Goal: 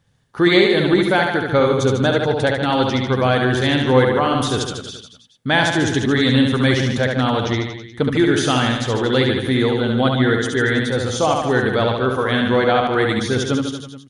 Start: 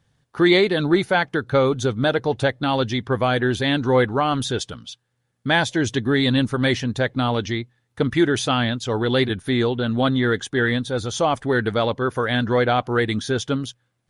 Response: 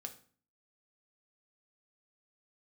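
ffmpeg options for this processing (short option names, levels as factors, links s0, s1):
-filter_complex "[0:a]aecho=1:1:70|147|231.7|324.9|427.4:0.631|0.398|0.251|0.158|0.1,asplit=2[s0][s1];[1:a]atrim=start_sample=2205[s2];[s1][s2]afir=irnorm=-1:irlink=0,volume=0.299[s3];[s0][s3]amix=inputs=2:normalize=0"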